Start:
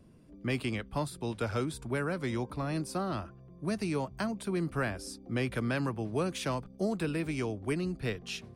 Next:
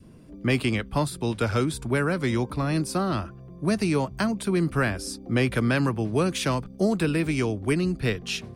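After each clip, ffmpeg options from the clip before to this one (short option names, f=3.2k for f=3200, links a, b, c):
-af "adynamicequalizer=threshold=0.00355:dfrequency=700:dqfactor=1.1:tfrequency=700:tqfactor=1.1:attack=5:release=100:ratio=0.375:range=2:mode=cutabove:tftype=bell,volume=9dB"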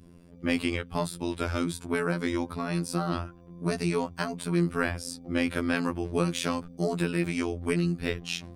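-af "afftfilt=real='hypot(re,im)*cos(PI*b)':imag='0':win_size=2048:overlap=0.75"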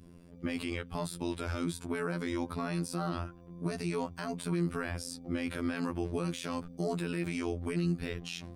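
-af "alimiter=limit=-18.5dB:level=0:latency=1:release=60,volume=-1.5dB"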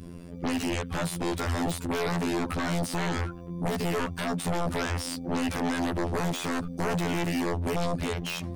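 -af "aeval=exprs='0.106*sin(PI/2*4.47*val(0)/0.106)':c=same,volume=-5dB"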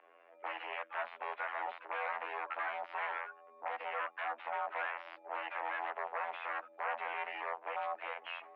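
-af "highpass=f=600:t=q:w=0.5412,highpass=f=600:t=q:w=1.307,lowpass=f=2.5k:t=q:w=0.5176,lowpass=f=2.5k:t=q:w=0.7071,lowpass=f=2.5k:t=q:w=1.932,afreqshift=65,volume=-4dB"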